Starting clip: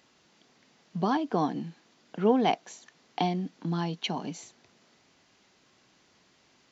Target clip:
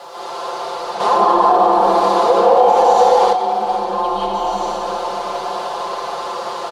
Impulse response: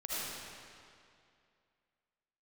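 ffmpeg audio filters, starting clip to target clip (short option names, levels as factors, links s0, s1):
-filter_complex "[0:a]aeval=exprs='val(0)+0.5*0.0501*sgn(val(0))':c=same,acrossover=split=370 2100:gain=0.158 1 0.224[s0][s1][s2];[s0][s1][s2]amix=inputs=3:normalize=0,aecho=1:1:6:0.84[s3];[1:a]atrim=start_sample=2205,asetrate=23814,aresample=44100[s4];[s3][s4]afir=irnorm=-1:irlink=0,alimiter=limit=0.237:level=0:latency=1:release=61,afreqshift=28,asettb=1/sr,asplit=3[s5][s6][s7];[s5]atrim=end=1.004[s8];[s6]atrim=start=1:end=3.33,asetpts=PTS-STARTPTS,afade=t=in:d=0.004:c=qsin,afade=t=out:st=2.326:d=0.004:c=qsin,acontrast=70[s9];[s7]atrim=start=3.326[s10];[s8][s9]acrossfade=d=0.004:c1=hsin:c2=qsin[s11];[s11][s10]acrossfade=d=0.004:c1=qsin:c2=hsin,equalizer=f=125:t=o:w=1:g=10,equalizer=f=250:t=o:w=1:g=-10,equalizer=f=500:t=o:w=1:g=10,equalizer=f=1000:t=o:w=1:g=11,equalizer=f=2000:t=o:w=1:g=-12,equalizer=f=4000:t=o:w=1:g=9,volume=0.562"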